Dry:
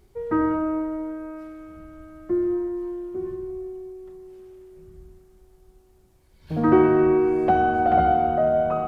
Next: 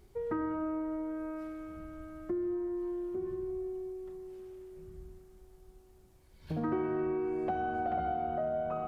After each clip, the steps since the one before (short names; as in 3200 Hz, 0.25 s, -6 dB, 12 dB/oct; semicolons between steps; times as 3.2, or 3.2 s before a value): compressor 3:1, threshold -32 dBFS, peak gain reduction 15 dB; gain -2.5 dB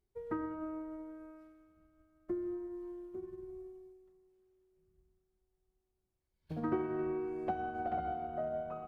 upward expander 2.5:1, over -46 dBFS; gain +1.5 dB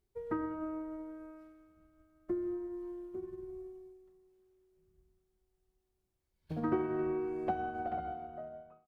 ending faded out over 1.35 s; gain +2 dB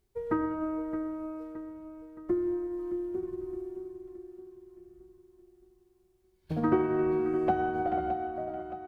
feedback echo 0.619 s, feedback 49%, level -11.5 dB; gain +6.5 dB